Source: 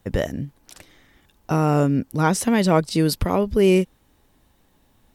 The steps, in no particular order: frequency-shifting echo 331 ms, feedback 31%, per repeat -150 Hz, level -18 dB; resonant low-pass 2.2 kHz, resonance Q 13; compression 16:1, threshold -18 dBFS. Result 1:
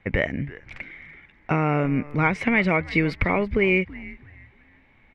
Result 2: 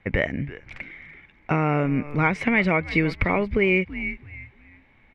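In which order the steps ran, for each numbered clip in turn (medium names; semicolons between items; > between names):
compression > resonant low-pass > frequency-shifting echo; frequency-shifting echo > compression > resonant low-pass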